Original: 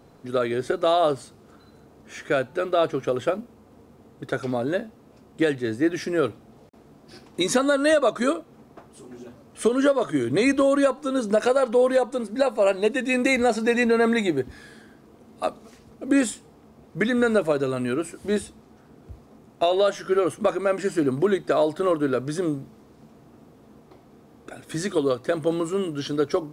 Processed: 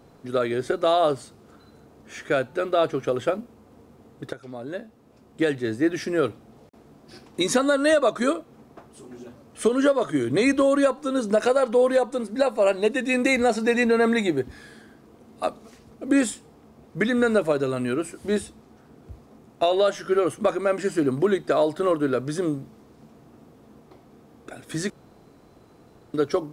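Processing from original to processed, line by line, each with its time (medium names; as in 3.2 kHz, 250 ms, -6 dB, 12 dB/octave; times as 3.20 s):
4.33–5.59 s: fade in, from -17 dB
24.90–26.14 s: room tone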